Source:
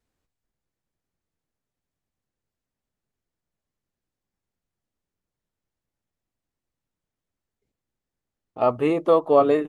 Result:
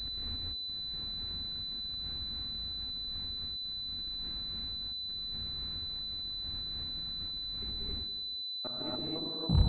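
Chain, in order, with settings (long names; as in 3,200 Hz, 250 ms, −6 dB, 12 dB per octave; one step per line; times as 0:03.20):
turntable brake at the end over 0.42 s
mains-hum notches 60/120 Hz
in parallel at −2.5 dB: output level in coarse steps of 15 dB
on the sum: low-shelf EQ 260 Hz +10 dB
reversed playback
upward compression, threshold −18 dBFS
reversed playback
graphic EQ with 10 bands 125 Hz −6 dB, 500 Hz −10 dB, 1,000 Hz −9 dB
volume swells 546 ms
harmonic generator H 8 −21 dB, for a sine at −17.5 dBFS
gate pattern "x.x.x...xx.xx" 177 BPM −60 dB
delay with a band-pass on its return 94 ms, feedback 65%, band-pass 510 Hz, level −10 dB
reverb whose tail is shaped and stops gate 300 ms rising, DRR −5.5 dB
switching amplifier with a slow clock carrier 4,000 Hz
level −1 dB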